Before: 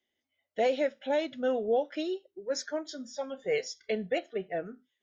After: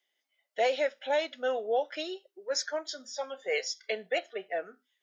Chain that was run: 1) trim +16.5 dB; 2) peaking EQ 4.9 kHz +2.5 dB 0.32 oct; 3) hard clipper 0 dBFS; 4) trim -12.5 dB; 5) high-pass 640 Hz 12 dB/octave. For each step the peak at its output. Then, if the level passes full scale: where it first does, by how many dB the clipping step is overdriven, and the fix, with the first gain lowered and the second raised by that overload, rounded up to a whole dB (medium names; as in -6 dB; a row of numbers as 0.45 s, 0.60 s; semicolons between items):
-1.5 dBFS, -1.5 dBFS, -1.5 dBFS, -14.0 dBFS, -16.0 dBFS; nothing clips